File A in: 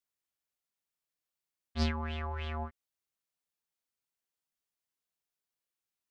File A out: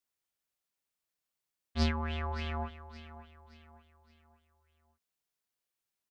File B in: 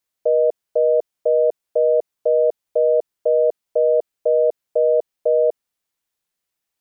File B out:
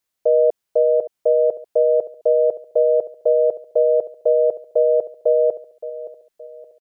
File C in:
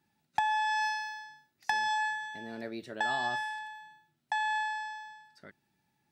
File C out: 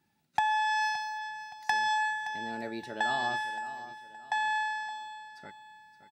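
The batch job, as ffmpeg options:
-af "aecho=1:1:570|1140|1710|2280:0.2|0.0798|0.0319|0.0128,volume=1.5dB"

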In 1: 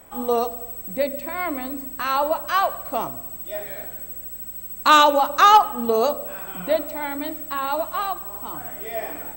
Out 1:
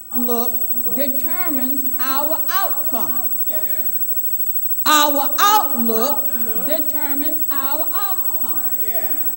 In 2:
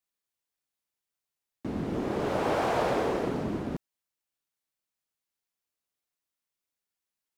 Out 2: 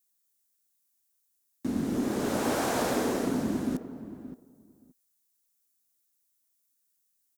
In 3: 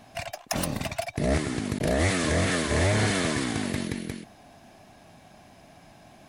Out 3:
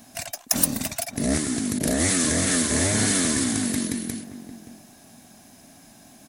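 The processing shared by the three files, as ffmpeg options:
-filter_complex "[0:a]equalizer=f=250:t=o:w=0.67:g=11,equalizer=f=1.6k:t=o:w=0.67:g=4,equalizer=f=4k:t=o:w=0.67:g=9,asplit=2[a][b];[b]adelay=574,lowpass=f=900:p=1,volume=-12dB,asplit=2[c][d];[d]adelay=574,lowpass=f=900:p=1,volume=0.16[e];[a][c][e]amix=inputs=3:normalize=0,aexciter=amount=6.1:drive=5.7:freq=5.8k,volume=-4dB"

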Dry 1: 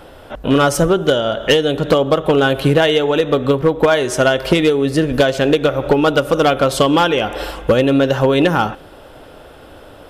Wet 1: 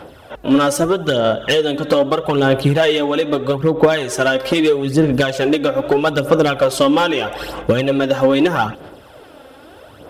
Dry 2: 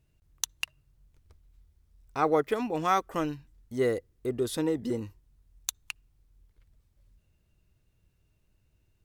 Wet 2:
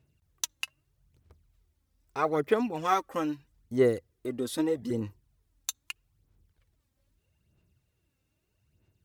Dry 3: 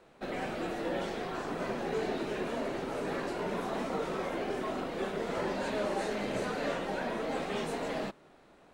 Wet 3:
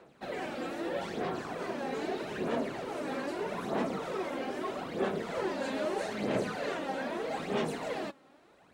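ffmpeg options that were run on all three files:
-filter_complex "[0:a]highpass=86,aphaser=in_gain=1:out_gain=1:delay=3.8:decay=0.54:speed=0.79:type=sinusoidal,asplit=2[a][b];[b]asoftclip=type=hard:threshold=-10.5dB,volume=-7dB[c];[a][c]amix=inputs=2:normalize=0,volume=-5.5dB"

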